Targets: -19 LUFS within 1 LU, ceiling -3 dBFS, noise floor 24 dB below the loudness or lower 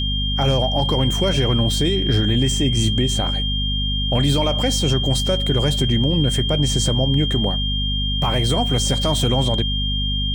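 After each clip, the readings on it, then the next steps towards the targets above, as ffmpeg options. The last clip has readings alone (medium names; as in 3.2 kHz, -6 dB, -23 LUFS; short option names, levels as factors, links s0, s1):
hum 50 Hz; highest harmonic 250 Hz; hum level -20 dBFS; steady tone 3.2 kHz; tone level -23 dBFS; loudness -19.0 LUFS; peak level -7.0 dBFS; loudness target -19.0 LUFS
-> -af "bandreject=f=50:t=h:w=4,bandreject=f=100:t=h:w=4,bandreject=f=150:t=h:w=4,bandreject=f=200:t=h:w=4,bandreject=f=250:t=h:w=4"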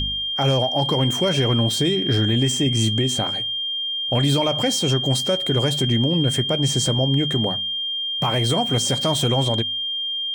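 hum not found; steady tone 3.2 kHz; tone level -23 dBFS
-> -af "bandreject=f=3200:w=30"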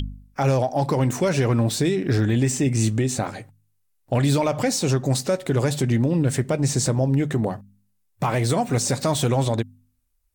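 steady tone not found; loudness -22.0 LUFS; peak level -10.5 dBFS; loudness target -19.0 LUFS
-> -af "volume=1.41"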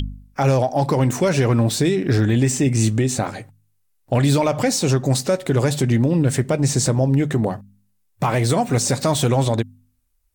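loudness -19.0 LUFS; peak level -7.5 dBFS; noise floor -65 dBFS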